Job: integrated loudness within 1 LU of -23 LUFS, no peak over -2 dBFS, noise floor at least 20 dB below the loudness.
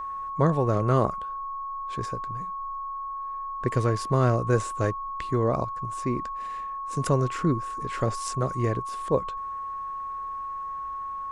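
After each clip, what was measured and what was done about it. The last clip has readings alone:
steady tone 1100 Hz; tone level -31 dBFS; loudness -28.0 LUFS; peak -9.0 dBFS; loudness target -23.0 LUFS
-> notch 1100 Hz, Q 30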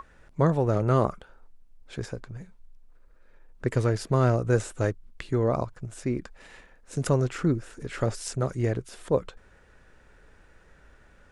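steady tone none; loudness -27.5 LUFS; peak -9.0 dBFS; loudness target -23.0 LUFS
-> gain +4.5 dB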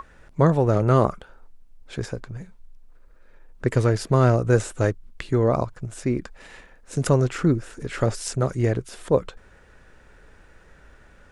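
loudness -23.0 LUFS; peak -4.5 dBFS; noise floor -52 dBFS

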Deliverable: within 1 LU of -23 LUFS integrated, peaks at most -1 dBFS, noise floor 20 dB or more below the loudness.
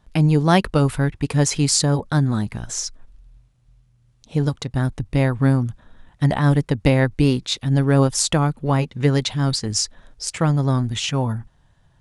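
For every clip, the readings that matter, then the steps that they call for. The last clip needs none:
loudness -20.0 LUFS; peak -2.5 dBFS; loudness target -23.0 LUFS
-> gain -3 dB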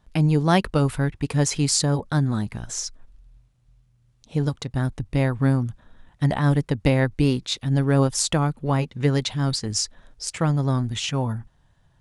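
loudness -23.0 LUFS; peak -5.5 dBFS; noise floor -62 dBFS

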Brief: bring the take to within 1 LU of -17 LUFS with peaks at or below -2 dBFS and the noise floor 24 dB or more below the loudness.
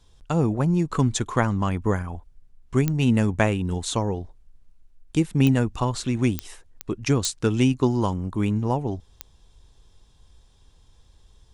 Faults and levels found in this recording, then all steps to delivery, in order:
clicks 6; loudness -24.0 LUFS; peak -5.0 dBFS; loudness target -17.0 LUFS
-> de-click; gain +7 dB; limiter -2 dBFS

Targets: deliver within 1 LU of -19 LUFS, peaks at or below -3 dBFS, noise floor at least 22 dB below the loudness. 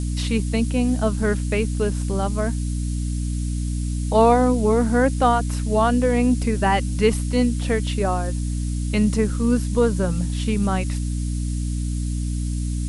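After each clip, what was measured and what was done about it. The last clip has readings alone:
hum 60 Hz; harmonics up to 300 Hz; hum level -22 dBFS; noise floor -25 dBFS; noise floor target -44 dBFS; loudness -22.0 LUFS; peak -3.5 dBFS; loudness target -19.0 LUFS
-> de-hum 60 Hz, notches 5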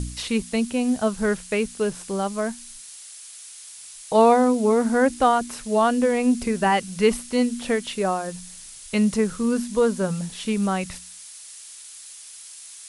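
hum none; noise floor -42 dBFS; noise floor target -45 dBFS
-> noise print and reduce 6 dB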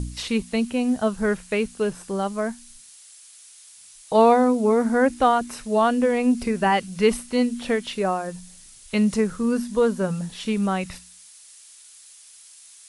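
noise floor -48 dBFS; loudness -22.5 LUFS; peak -5.0 dBFS; loudness target -19.0 LUFS
-> gain +3.5 dB; limiter -3 dBFS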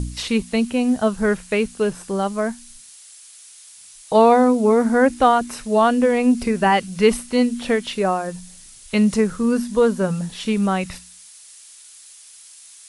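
loudness -19.0 LUFS; peak -3.0 dBFS; noise floor -45 dBFS

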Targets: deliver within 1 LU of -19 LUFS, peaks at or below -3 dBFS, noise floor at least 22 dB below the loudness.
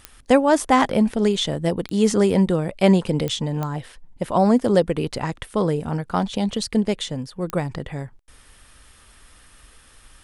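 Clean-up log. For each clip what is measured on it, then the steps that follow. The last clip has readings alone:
clicks 5; loudness -21.0 LUFS; peak -2.5 dBFS; loudness target -19.0 LUFS
-> de-click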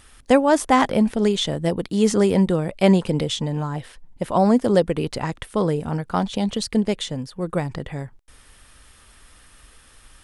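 clicks 0; loudness -21.0 LUFS; peak -2.5 dBFS; loudness target -19.0 LUFS
-> gain +2 dB; limiter -3 dBFS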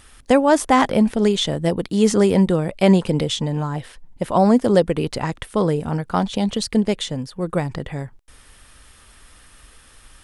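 loudness -19.5 LUFS; peak -3.0 dBFS; noise floor -50 dBFS

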